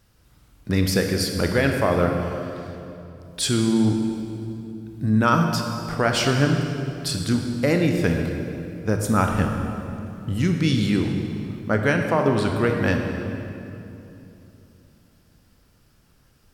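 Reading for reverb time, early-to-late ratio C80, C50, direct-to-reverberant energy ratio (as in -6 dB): 3.0 s, 5.0 dB, 4.0 dB, 3.0 dB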